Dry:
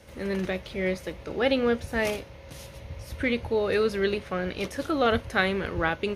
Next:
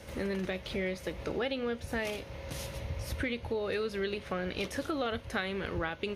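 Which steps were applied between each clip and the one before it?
dynamic EQ 3300 Hz, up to +4 dB, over -42 dBFS, Q 1.4; compressor 6:1, threshold -35 dBFS, peak gain reduction 16.5 dB; gain +3.5 dB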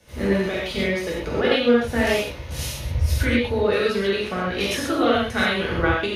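non-linear reverb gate 0.16 s flat, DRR -5.5 dB; three-band expander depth 70%; gain +7 dB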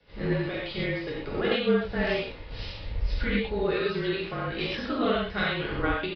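frequency shift -34 Hz; downsampling 11025 Hz; gain -6.5 dB

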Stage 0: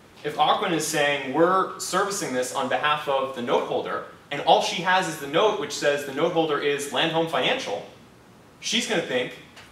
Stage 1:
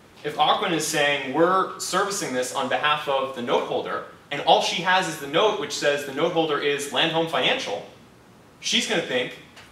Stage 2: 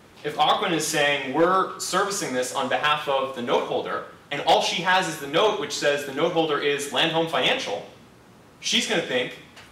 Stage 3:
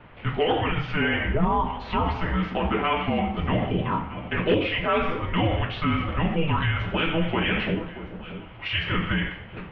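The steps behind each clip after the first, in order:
dynamic EQ 3400 Hz, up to +3 dB, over -36 dBFS, Q 0.8
overloaded stage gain 11.5 dB
limiter -18.5 dBFS, peak gain reduction 7 dB; echo with dull and thin repeats by turns 0.63 s, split 1100 Hz, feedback 57%, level -12 dB; mistuned SSB -320 Hz 210–3200 Hz; gain +4 dB

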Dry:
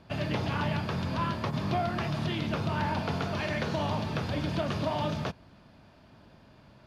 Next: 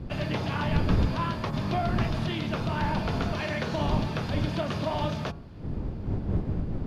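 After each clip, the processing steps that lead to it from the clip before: wind noise 160 Hz -32 dBFS; de-hum 140.2 Hz, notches 11; gain +1 dB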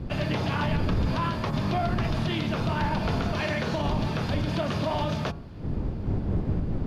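limiter -20.5 dBFS, peak gain reduction 8 dB; gain +3 dB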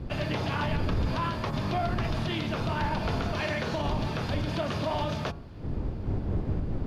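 bell 180 Hz -3.5 dB 0.95 oct; gain -1.5 dB

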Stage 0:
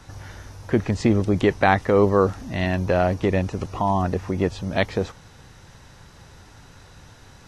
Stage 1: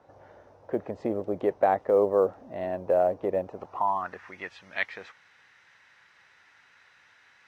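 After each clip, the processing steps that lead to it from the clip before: band-pass sweep 580 Hz -> 2000 Hz, 3.45–4.33; short-mantissa float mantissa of 6-bit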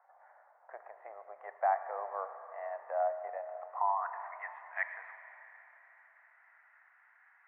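elliptic band-pass 700–2000 Hz, stop band 50 dB; Schroeder reverb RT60 3.6 s, combs from 27 ms, DRR 8.5 dB; gain -4 dB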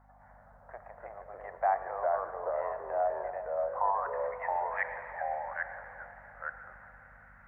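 hum 50 Hz, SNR 25 dB; echoes that change speed 0.205 s, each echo -2 st, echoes 2; gain +1.5 dB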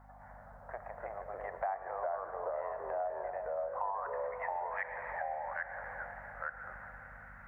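compressor 3:1, threshold -41 dBFS, peak gain reduction 13.5 dB; gain +4 dB

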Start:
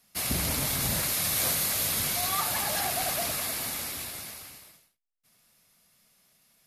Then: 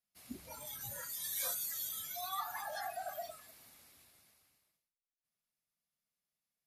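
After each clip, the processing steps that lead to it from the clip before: spectral noise reduction 20 dB; gain -7.5 dB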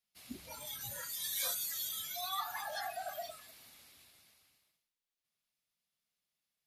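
bell 3400 Hz +6.5 dB 1.4 oct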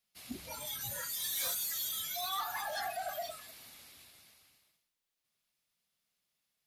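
soft clip -35 dBFS, distortion -14 dB; gain +4.5 dB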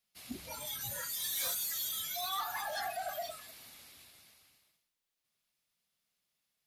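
nothing audible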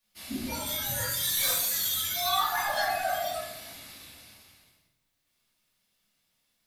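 shoebox room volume 220 m³, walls mixed, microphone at 2.5 m; gain +1.5 dB

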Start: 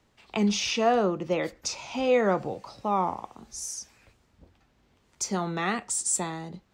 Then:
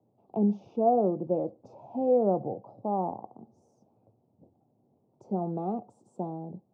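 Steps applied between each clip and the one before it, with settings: elliptic band-pass 110–760 Hz, stop band 40 dB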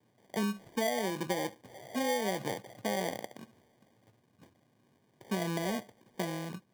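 compressor 12:1, threshold -28 dBFS, peak gain reduction 10.5 dB; sample-and-hold 33×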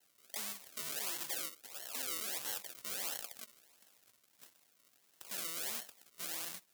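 tube stage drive 42 dB, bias 0.65; decimation with a swept rate 36×, swing 100% 1.5 Hz; differentiator; gain +16 dB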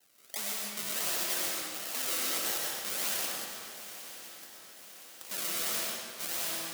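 swung echo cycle 1.015 s, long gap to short 3:1, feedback 52%, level -14.5 dB; reverb RT60 1.8 s, pre-delay 65 ms, DRR -3 dB; gain +4.5 dB

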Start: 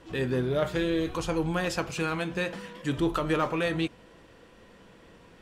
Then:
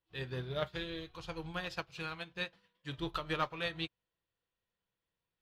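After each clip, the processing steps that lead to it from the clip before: graphic EQ 125/250/500/4000/8000 Hz +3/-9/-3/+9/-9 dB; upward expander 2.5:1, over -47 dBFS; gain -3.5 dB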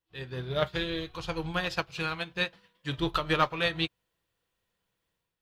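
AGC gain up to 9 dB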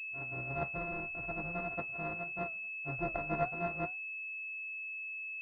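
sample sorter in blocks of 64 samples; flange 1.7 Hz, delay 7.8 ms, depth 2.4 ms, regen +75%; pulse-width modulation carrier 2600 Hz; gain -2.5 dB

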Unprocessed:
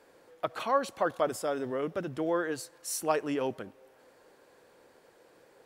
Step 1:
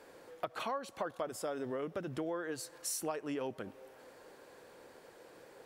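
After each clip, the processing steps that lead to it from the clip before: compressor 6:1, threshold -39 dBFS, peak gain reduction 17 dB; gain +3.5 dB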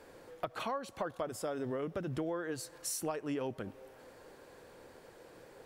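low shelf 130 Hz +12 dB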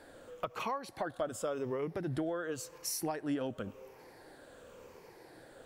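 moving spectral ripple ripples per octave 0.8, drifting -0.92 Hz, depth 8 dB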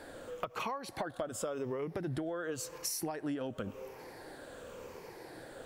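compressor 6:1, threshold -40 dBFS, peak gain reduction 10 dB; gain +6 dB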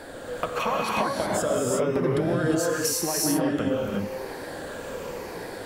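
non-linear reverb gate 0.39 s rising, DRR -3 dB; gain +8.5 dB

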